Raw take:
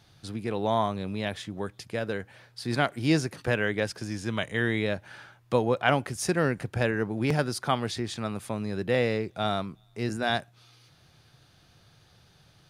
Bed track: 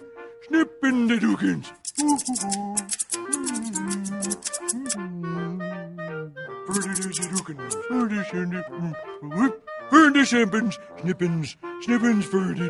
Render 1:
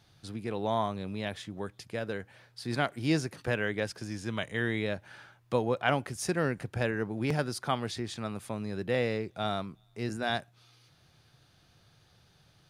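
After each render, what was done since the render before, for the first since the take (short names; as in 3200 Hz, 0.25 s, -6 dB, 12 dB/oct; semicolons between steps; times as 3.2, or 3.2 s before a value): gain -4 dB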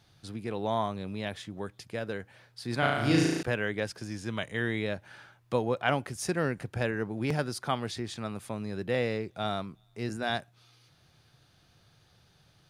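2.79–3.43 flutter echo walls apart 6.2 m, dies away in 1.2 s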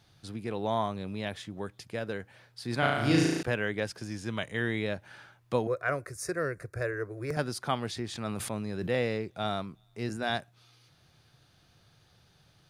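5.67–7.37 fixed phaser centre 840 Hz, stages 6; 8.1–8.9 sustainer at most 23 dB/s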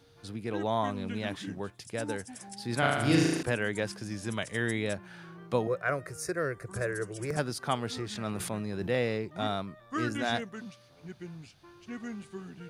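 add bed track -19.5 dB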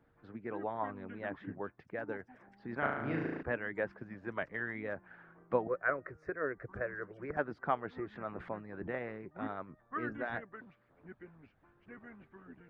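Chebyshev low-pass 1800 Hz, order 3; harmonic-percussive split harmonic -16 dB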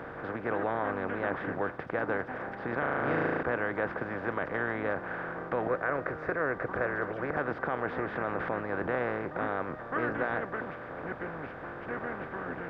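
per-bin compression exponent 0.4; limiter -18.5 dBFS, peak gain reduction 6.5 dB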